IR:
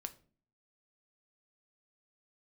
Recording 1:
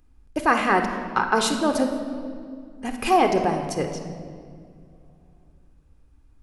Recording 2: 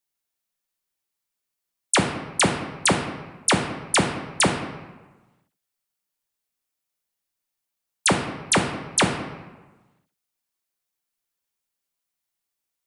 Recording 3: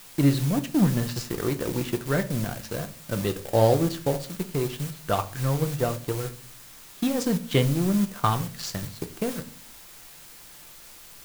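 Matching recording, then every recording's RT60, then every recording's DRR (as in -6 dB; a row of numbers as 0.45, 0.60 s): 3; 2.3, 1.2, 0.40 s; 5.5, 2.5, 7.5 dB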